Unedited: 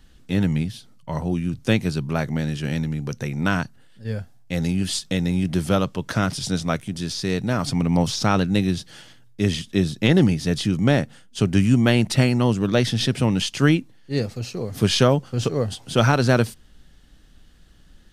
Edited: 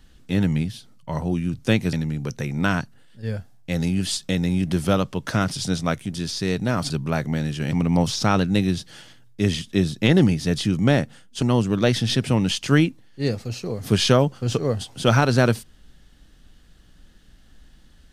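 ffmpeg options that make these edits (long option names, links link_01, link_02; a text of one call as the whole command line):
ffmpeg -i in.wav -filter_complex "[0:a]asplit=5[link_01][link_02][link_03][link_04][link_05];[link_01]atrim=end=1.932[link_06];[link_02]atrim=start=2.748:end=7.722[link_07];[link_03]atrim=start=1.928:end=2.752[link_08];[link_04]atrim=start=7.718:end=11.422[link_09];[link_05]atrim=start=12.328[link_10];[link_06][link_07]acrossfade=duration=0.004:curve1=hsin:curve2=hsin[link_11];[link_11][link_08]acrossfade=duration=0.004:curve1=hsin:curve2=hsin[link_12];[link_12][link_09]acrossfade=duration=0.004:curve1=hsin:curve2=hsin[link_13];[link_13][link_10]acrossfade=duration=0.004:curve1=hsin:curve2=hsin" out.wav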